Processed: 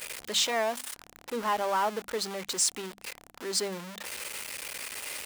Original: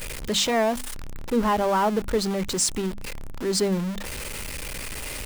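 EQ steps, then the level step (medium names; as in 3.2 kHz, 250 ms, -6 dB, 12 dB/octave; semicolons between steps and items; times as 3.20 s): high-pass 310 Hz 6 dB/octave; bass shelf 400 Hz -10.5 dB; -2.5 dB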